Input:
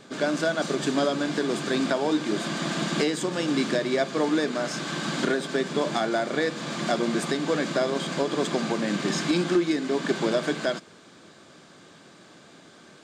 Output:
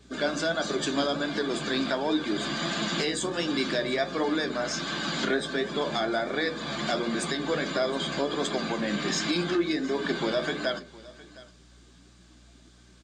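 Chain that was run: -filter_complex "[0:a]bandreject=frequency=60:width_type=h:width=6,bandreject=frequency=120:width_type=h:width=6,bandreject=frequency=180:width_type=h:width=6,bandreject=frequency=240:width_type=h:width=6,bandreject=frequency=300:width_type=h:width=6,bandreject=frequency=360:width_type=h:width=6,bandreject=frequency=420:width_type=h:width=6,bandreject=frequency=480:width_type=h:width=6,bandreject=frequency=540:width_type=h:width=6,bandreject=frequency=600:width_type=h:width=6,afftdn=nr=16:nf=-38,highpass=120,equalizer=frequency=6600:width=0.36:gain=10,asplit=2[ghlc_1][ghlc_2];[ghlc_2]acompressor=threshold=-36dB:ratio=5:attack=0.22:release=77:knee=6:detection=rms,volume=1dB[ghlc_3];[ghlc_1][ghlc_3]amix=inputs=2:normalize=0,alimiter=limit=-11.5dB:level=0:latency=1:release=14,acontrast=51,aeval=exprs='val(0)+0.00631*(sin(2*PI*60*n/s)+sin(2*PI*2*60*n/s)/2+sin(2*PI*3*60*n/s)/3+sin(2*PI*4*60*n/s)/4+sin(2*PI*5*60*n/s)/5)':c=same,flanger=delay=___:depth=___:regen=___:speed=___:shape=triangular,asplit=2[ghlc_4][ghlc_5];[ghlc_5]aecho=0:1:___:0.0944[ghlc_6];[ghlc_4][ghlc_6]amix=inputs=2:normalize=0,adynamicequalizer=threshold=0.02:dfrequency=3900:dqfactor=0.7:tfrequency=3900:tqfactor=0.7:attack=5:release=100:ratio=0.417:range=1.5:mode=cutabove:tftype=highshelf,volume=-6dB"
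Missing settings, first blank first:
9, 6.2, 58, 1.4, 713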